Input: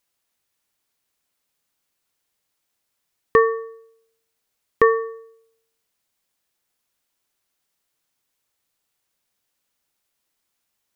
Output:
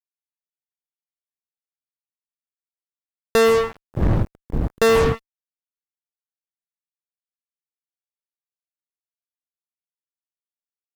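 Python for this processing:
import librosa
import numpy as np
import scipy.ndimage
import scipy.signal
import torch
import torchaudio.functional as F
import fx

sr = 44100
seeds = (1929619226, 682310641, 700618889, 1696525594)

y = fx.dmg_wind(x, sr, seeds[0], corner_hz=130.0, level_db=-32.0, at=(3.45, 5.13), fade=0.02)
y = fx.fuzz(y, sr, gain_db=31.0, gate_db=-37.0)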